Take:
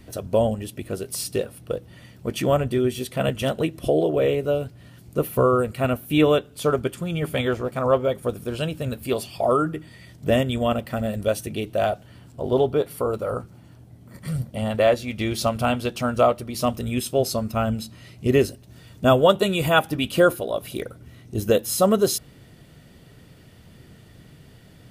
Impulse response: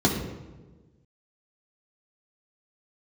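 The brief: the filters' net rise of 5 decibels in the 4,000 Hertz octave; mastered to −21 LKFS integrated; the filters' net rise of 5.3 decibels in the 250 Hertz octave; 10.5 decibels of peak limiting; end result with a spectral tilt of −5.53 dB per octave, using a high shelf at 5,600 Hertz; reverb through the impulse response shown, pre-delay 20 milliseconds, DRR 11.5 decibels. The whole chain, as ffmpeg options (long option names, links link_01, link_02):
-filter_complex "[0:a]equalizer=frequency=250:width_type=o:gain=6.5,equalizer=frequency=4000:width_type=o:gain=4,highshelf=frequency=5600:gain=7,alimiter=limit=-11.5dB:level=0:latency=1,asplit=2[link_01][link_02];[1:a]atrim=start_sample=2205,adelay=20[link_03];[link_02][link_03]afir=irnorm=-1:irlink=0,volume=-26.5dB[link_04];[link_01][link_04]amix=inputs=2:normalize=0,volume=1dB"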